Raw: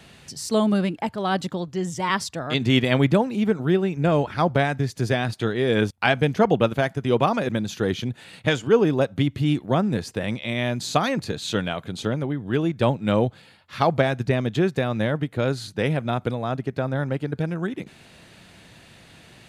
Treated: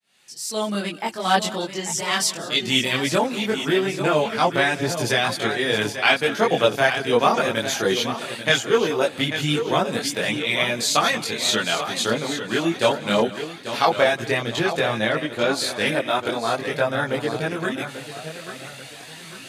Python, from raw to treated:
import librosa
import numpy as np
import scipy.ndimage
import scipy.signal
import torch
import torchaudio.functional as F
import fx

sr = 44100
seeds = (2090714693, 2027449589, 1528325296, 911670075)

p1 = fx.fade_in_head(x, sr, length_s=1.43)
p2 = fx.peak_eq(p1, sr, hz=980.0, db=-8.5, octaves=1.9, at=(2.0, 3.07))
p3 = fx.highpass(p2, sr, hz=220.0, slope=6)
p4 = fx.tilt_eq(p3, sr, slope=2.5)
p5 = p4 + 10.0 ** (-18.5 / 20.0) * np.pad(p4, (int(187 * sr / 1000.0), 0))[:len(p4)]
p6 = fx.rider(p5, sr, range_db=4, speed_s=0.5)
p7 = p5 + (p6 * librosa.db_to_amplitude(-1.5))
p8 = fx.lowpass(p7, sr, hz=fx.line((14.38, 8500.0), (15.52, 5000.0)), slope=6, at=(14.38, 15.52), fade=0.02)
p9 = p8 + fx.echo_feedback(p8, sr, ms=840, feedback_pct=40, wet_db=-10.0, dry=0)
p10 = fx.chorus_voices(p9, sr, voices=4, hz=0.18, base_ms=22, depth_ms=4.7, mix_pct=55)
y = p10 * librosa.db_to_amplitude(2.0)